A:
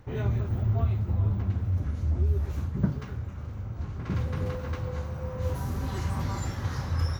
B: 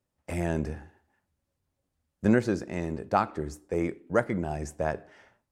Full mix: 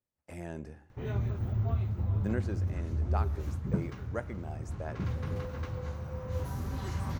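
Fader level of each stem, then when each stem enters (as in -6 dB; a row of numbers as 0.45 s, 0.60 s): -4.5 dB, -12.0 dB; 0.90 s, 0.00 s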